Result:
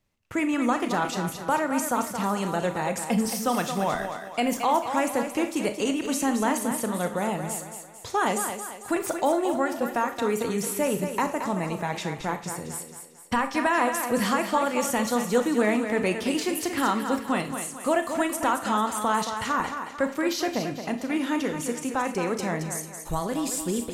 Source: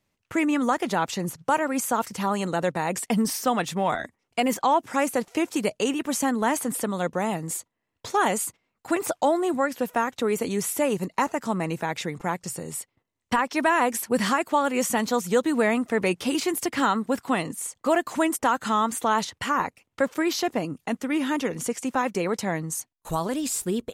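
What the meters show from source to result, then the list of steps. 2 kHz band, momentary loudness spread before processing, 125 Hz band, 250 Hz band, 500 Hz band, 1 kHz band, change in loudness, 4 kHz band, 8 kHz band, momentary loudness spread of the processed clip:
−1.0 dB, 7 LU, −0.5 dB, −0.5 dB, −1.0 dB, −1.0 dB, −1.0 dB, −1.0 dB, −1.0 dB, 7 LU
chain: low-shelf EQ 74 Hz +10.5 dB
on a send: feedback echo with a high-pass in the loop 223 ms, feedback 45%, high-pass 220 Hz, level −7.5 dB
on the sum: four-comb reverb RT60 0.36 s, combs from 26 ms, DRR 8.5 dB
level −2.5 dB

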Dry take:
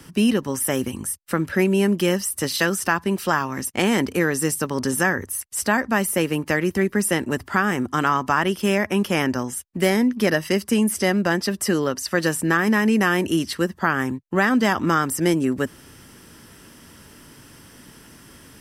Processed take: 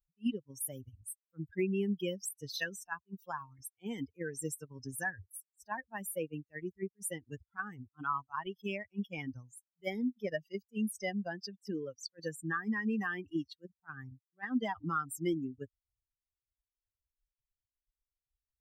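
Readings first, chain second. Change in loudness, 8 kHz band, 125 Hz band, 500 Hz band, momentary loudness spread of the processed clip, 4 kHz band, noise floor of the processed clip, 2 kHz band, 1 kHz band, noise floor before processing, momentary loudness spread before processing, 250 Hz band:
−17.0 dB, −17.5 dB, −17.5 dB, −18.0 dB, 12 LU, −18.5 dB, below −85 dBFS, −18.0 dB, −17.0 dB, −48 dBFS, 5 LU, −17.0 dB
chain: spectral dynamics exaggerated over time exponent 3
level that may rise only so fast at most 590 dB per second
level −8.5 dB

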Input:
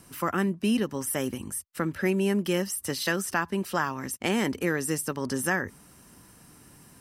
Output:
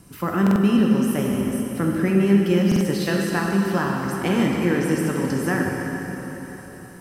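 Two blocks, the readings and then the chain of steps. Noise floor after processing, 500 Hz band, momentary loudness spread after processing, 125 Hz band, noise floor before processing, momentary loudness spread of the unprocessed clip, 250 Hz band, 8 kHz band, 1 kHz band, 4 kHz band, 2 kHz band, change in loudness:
−40 dBFS, +6.5 dB, 13 LU, +11.0 dB, −55 dBFS, 5 LU, +10.0 dB, −3.0 dB, +4.0 dB, +2.0 dB, +3.0 dB, +7.0 dB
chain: low-shelf EQ 380 Hz +8.5 dB
dense smooth reverb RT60 4 s, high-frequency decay 0.85×, DRR −1.5 dB
dynamic equaliser 9,700 Hz, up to −7 dB, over −48 dBFS, Q 1.1
buffer that repeats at 0:00.42/0:02.67, samples 2,048, times 2
level −1 dB

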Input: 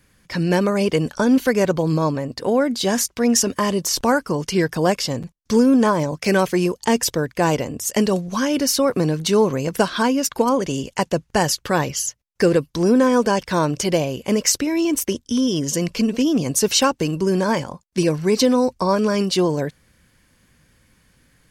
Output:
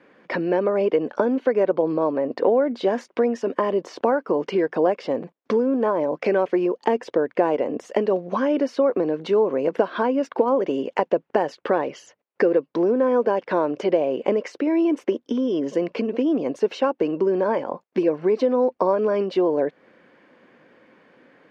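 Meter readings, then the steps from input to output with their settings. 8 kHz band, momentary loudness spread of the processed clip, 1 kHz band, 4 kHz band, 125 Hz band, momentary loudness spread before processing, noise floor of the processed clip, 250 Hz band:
below −25 dB, 4 LU, −3.0 dB, −16.0 dB, −14.5 dB, 6 LU, −68 dBFS, −5.0 dB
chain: downward compressor 6 to 1, threshold −29 dBFS, peak gain reduction 17 dB
Chebyshev band-pass filter 270–2,600 Hz, order 2
parametric band 550 Hz +15 dB 2.6 octaves

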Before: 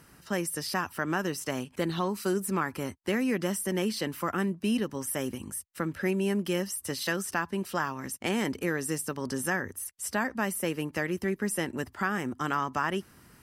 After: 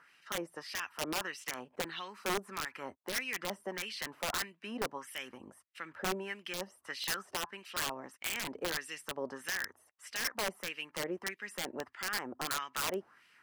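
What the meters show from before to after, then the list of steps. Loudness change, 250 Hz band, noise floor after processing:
−7.0 dB, −15.5 dB, −70 dBFS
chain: auto-filter band-pass sine 1.6 Hz 580–2,800 Hz
wrap-around overflow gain 30.5 dB
level +3.5 dB

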